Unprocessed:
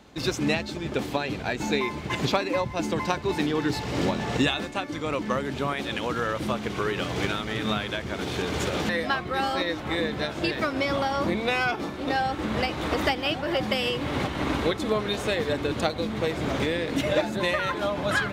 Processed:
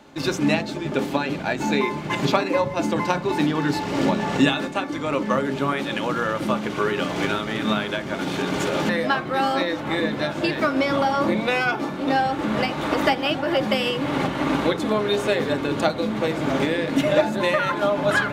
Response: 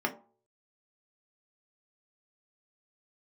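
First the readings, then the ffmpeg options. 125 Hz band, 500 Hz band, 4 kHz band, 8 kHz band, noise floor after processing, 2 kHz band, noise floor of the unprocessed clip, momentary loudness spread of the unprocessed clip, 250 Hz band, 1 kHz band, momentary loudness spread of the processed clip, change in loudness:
+2.0 dB, +4.5 dB, +1.5 dB, +1.5 dB, -30 dBFS, +3.5 dB, -35 dBFS, 4 LU, +5.5 dB, +5.0 dB, 4 LU, +4.5 dB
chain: -filter_complex "[0:a]asplit=2[a][b];[1:a]atrim=start_sample=2205,asetrate=30429,aresample=44100[c];[b][c]afir=irnorm=-1:irlink=0,volume=-11.5dB[d];[a][d]amix=inputs=2:normalize=0"

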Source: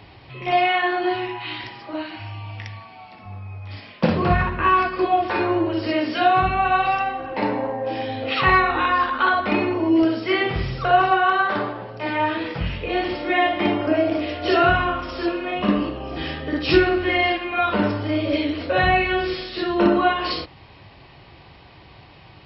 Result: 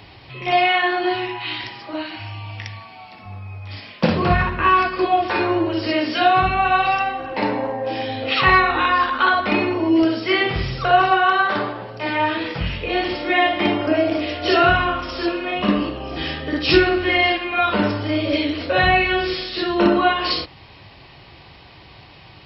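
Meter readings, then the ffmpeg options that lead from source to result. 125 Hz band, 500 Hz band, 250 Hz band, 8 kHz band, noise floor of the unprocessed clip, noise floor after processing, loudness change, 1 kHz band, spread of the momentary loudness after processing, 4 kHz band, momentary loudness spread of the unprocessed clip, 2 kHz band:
+1.0 dB, +1.0 dB, +1.0 dB, n/a, -47 dBFS, -45 dBFS, +2.0 dB, +1.5 dB, 14 LU, +5.0 dB, 14 LU, +3.0 dB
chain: -af "highshelf=f=3.1k:g=7.5,volume=1dB"

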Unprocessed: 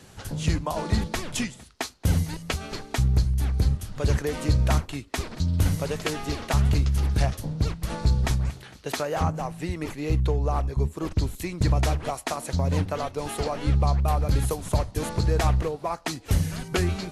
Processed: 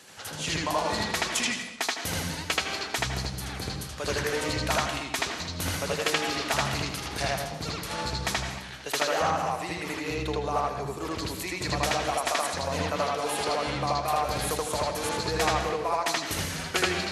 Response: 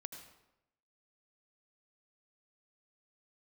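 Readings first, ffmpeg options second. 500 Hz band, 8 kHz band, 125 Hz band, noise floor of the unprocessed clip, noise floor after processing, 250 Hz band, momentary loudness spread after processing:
+0.5 dB, +4.0 dB, -12.0 dB, -48 dBFS, -39 dBFS, -4.5 dB, 6 LU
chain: -filter_complex "[0:a]highpass=f=960:p=1,asplit=2[a][b];[1:a]atrim=start_sample=2205,lowpass=6k,adelay=79[c];[b][c]afir=irnorm=-1:irlink=0,volume=6.5dB[d];[a][d]amix=inputs=2:normalize=0,volume=2.5dB"

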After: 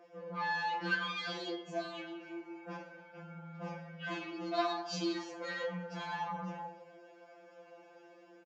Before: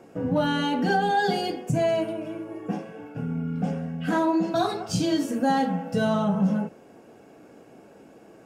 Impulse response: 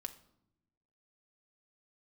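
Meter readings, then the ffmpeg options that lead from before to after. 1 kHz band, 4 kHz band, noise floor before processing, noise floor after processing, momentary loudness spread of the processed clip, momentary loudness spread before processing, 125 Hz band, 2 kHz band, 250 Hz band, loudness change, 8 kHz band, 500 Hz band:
-12.0 dB, -8.0 dB, -51 dBFS, -59 dBFS, 23 LU, 10 LU, -18.0 dB, -5.5 dB, -17.5 dB, -13.0 dB, -12.5 dB, -14.5 dB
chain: -filter_complex "[0:a]dynaudnorm=f=430:g=3:m=3dB,aresample=16000,asoftclip=type=tanh:threshold=-19.5dB,aresample=44100,highpass=460,lowpass=4.9k[a];[1:a]atrim=start_sample=2205,afade=t=out:st=0.4:d=0.01,atrim=end_sample=18081[b];[a][b]afir=irnorm=-1:irlink=0,afftfilt=real='re*2.83*eq(mod(b,8),0)':imag='im*2.83*eq(mod(b,8),0)':win_size=2048:overlap=0.75"

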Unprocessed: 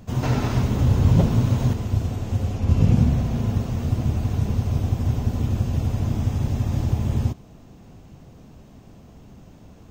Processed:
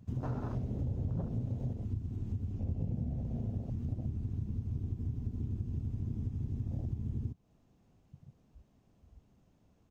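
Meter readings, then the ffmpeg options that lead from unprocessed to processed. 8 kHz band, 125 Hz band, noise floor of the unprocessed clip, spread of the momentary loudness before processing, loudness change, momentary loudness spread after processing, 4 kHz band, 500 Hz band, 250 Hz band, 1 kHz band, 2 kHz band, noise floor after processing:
n/a, -15.0 dB, -47 dBFS, 7 LU, -15.0 dB, 2 LU, under -30 dB, -17.0 dB, -15.0 dB, under -15 dB, under -25 dB, -69 dBFS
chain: -af "afwtdn=0.0501,acompressor=threshold=-29dB:ratio=4,aresample=32000,aresample=44100,volume=-5dB"

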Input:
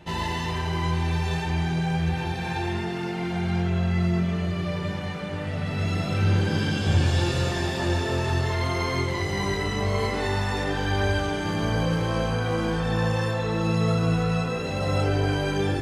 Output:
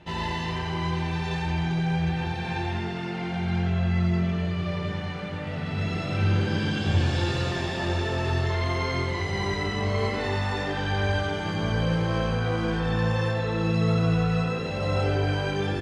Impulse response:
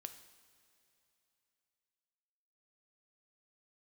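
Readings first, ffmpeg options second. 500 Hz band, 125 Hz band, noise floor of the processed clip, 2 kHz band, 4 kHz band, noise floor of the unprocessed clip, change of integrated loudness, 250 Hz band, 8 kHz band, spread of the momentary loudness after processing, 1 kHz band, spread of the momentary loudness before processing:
-1.5 dB, -1.0 dB, -31 dBFS, -0.5 dB, -1.0 dB, -30 dBFS, -1.0 dB, -1.0 dB, -6.0 dB, 6 LU, -1.5 dB, 5 LU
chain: -filter_complex "[0:a]lowpass=3.6k,aemphasis=mode=production:type=50fm,asplit=2[a][b];[b]aecho=0:1:90:0.422[c];[a][c]amix=inputs=2:normalize=0,volume=-2dB"

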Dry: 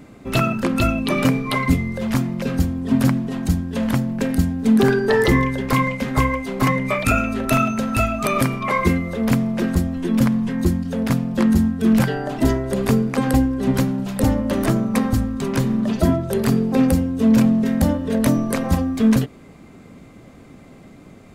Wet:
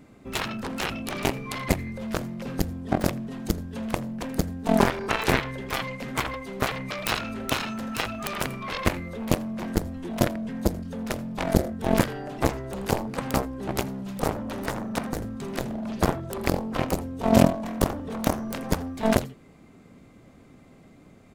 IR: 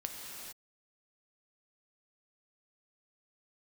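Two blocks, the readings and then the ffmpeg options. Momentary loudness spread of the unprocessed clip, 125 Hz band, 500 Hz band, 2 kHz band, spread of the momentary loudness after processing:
5 LU, -9.5 dB, -5.5 dB, -6.0 dB, 8 LU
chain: -af "aecho=1:1:82:0.237,aeval=exprs='0.562*(cos(1*acos(clip(val(0)/0.562,-1,1)))-cos(1*PI/2))+0.251*(cos(3*acos(clip(val(0)/0.562,-1,1)))-cos(3*PI/2))':c=same,volume=1dB"

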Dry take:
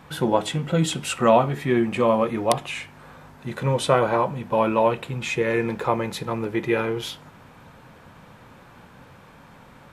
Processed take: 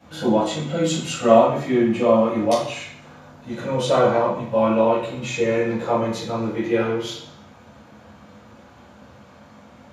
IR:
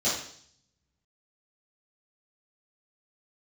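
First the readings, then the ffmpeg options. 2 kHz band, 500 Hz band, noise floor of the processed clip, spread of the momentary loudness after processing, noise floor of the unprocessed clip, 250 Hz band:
-1.5 dB, +3.5 dB, -48 dBFS, 12 LU, -49 dBFS, +3.5 dB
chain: -filter_complex "[1:a]atrim=start_sample=2205[a];[0:a][a]afir=irnorm=-1:irlink=0,volume=-11dB"

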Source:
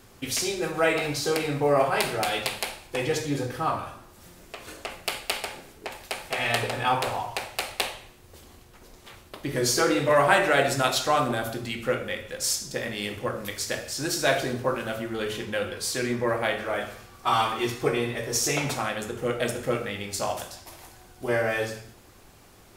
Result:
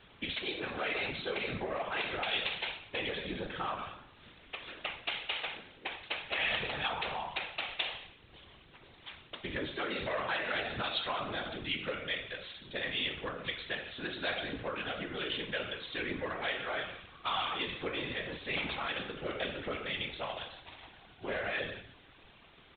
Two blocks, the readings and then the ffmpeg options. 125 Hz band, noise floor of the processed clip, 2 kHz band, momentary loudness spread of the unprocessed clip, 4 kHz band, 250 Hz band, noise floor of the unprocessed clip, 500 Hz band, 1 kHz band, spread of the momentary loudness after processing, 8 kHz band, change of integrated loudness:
-13.5 dB, -59 dBFS, -6.5 dB, 13 LU, -4.5 dB, -12.0 dB, -52 dBFS, -13.0 dB, -11.5 dB, 13 LU, under -40 dB, -9.5 dB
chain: -af "acompressor=threshold=-26dB:ratio=4,aresample=8000,asoftclip=type=tanh:threshold=-22dB,aresample=44100,crystalizer=i=7.5:c=0,afftfilt=real='hypot(re,im)*cos(2*PI*random(0))':imag='hypot(re,im)*sin(2*PI*random(1))':win_size=512:overlap=0.75,volume=-2.5dB"

